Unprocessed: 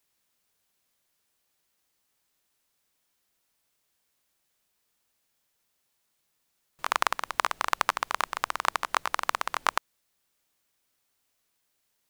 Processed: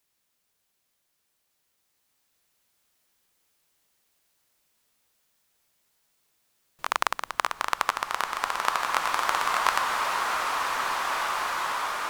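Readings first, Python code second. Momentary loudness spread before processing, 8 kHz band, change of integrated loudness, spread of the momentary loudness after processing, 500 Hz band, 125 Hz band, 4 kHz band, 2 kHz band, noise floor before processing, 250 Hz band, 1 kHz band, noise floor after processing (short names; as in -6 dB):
3 LU, +4.5 dB, +2.0 dB, 5 LU, +4.5 dB, n/a, +4.0 dB, +4.5 dB, -76 dBFS, +4.0 dB, +4.5 dB, -76 dBFS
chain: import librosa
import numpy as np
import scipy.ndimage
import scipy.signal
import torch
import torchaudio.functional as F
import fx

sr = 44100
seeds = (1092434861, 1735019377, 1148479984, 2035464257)

y = fx.rev_bloom(x, sr, seeds[0], attack_ms=2450, drr_db=-2.5)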